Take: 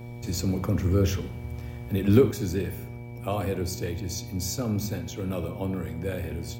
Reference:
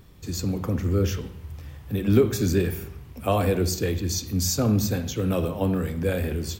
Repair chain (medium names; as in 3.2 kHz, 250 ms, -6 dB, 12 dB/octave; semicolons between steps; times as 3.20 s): de-hum 119.3 Hz, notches 8; band-stop 2.3 kHz, Q 30; gain correction +6.5 dB, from 2.31 s